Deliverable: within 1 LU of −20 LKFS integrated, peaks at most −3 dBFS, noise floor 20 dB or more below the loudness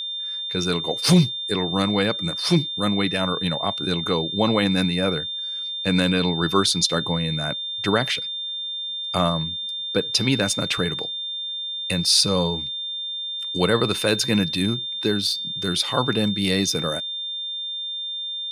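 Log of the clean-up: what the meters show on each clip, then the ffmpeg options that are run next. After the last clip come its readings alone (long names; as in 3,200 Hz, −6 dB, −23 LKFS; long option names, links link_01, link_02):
interfering tone 3,600 Hz; level of the tone −27 dBFS; integrated loudness −22.0 LKFS; sample peak −4.5 dBFS; target loudness −20.0 LKFS
→ -af "bandreject=frequency=3600:width=30"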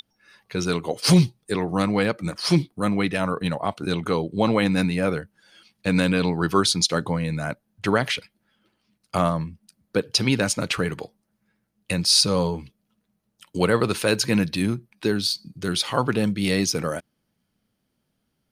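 interfering tone none found; integrated loudness −23.0 LKFS; sample peak −5.0 dBFS; target loudness −20.0 LKFS
→ -af "volume=3dB,alimiter=limit=-3dB:level=0:latency=1"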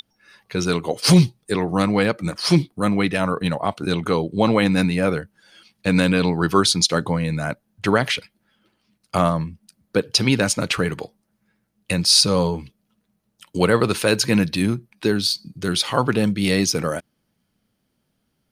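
integrated loudness −20.0 LKFS; sample peak −3.0 dBFS; background noise floor −72 dBFS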